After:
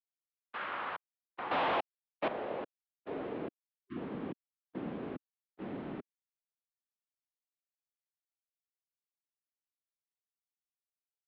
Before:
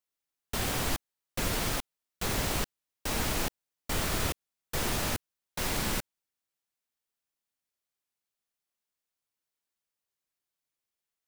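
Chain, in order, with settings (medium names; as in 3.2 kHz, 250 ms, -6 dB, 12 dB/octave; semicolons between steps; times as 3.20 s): gate -33 dBFS, range -26 dB; band-pass sweep 1.8 kHz -> 430 Hz, 0.11–3.93 s; 1.51–2.28 s: waveshaping leveller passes 5; 3.67–3.96 s: spectral selection erased 580–1200 Hz; mistuned SSB -180 Hz 360–3600 Hz; trim +3 dB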